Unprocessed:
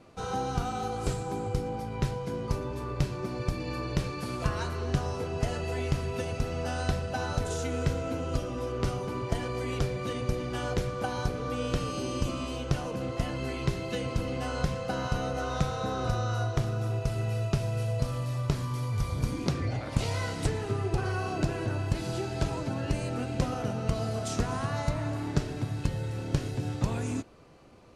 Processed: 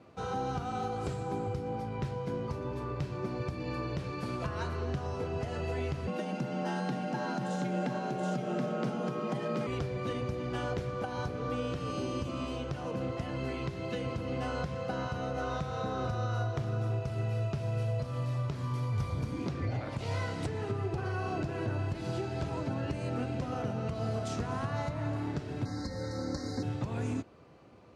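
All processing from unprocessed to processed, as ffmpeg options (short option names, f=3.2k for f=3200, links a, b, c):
-filter_complex "[0:a]asettb=1/sr,asplit=3[a][b][c];[a]atrim=end=6.074[d];[b]atrim=start=6.07:end=9.67,asetpts=PTS-STARTPTS,afade=t=in:d=0.004:c=qsin,afade=t=out:st=3.596:d=0.004:c=qsin,afreqshift=100,aecho=1:1:727:0.631,atrim=end_sample=158760[e];[c]atrim=start=9.666[f];[d][e]acrossfade=d=0.004:c1=hsin:c2=qsin[g];[g][f]acrossfade=d=0.004:c1=qsin:c2=hsin,asettb=1/sr,asplit=3[h][i][j];[h]atrim=end=25.654[k];[i]atrim=start=25.65:end=26.63,asetpts=PTS-STARTPTS,afade=t=in:d=0.004:c=qsin,afade=t=out:st=0.976:d=0.004:c=qsin,asuperstop=centerf=2900:order=20:qfactor=1.8,equalizer=f=5.1k:w=1.4:g=11.5,aecho=1:1:3.8:0.97,atrim=end_sample=43218[l];[j]atrim=start=26.626[m];[k][l]acrossfade=d=0.004:c1=hsin:c2=qsin[n];[n][m]acrossfade=d=0.004:c1=qsin:c2=hsin,highpass=f=65:w=0.5412,highpass=f=65:w=1.3066,aemphasis=mode=reproduction:type=50kf,alimiter=limit=-23dB:level=0:latency=1:release=166,volume=-1dB"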